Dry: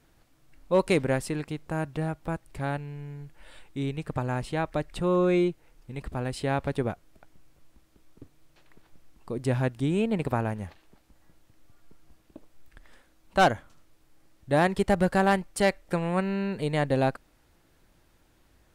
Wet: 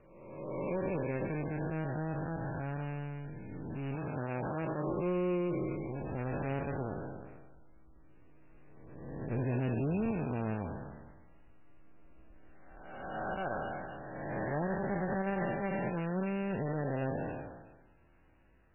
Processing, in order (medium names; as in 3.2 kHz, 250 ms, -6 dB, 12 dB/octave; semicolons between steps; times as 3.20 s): spectral blur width 689 ms; dynamic bell 3.8 kHz, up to +5 dB, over -60 dBFS, Q 1.3; peak limiter -25 dBFS, peak gain reduction 8.5 dB; 3.95–4.87 s: high-pass 140 Hz 6 dB/octave; 9.31–10.11 s: waveshaping leveller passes 1; MP3 8 kbps 11.025 kHz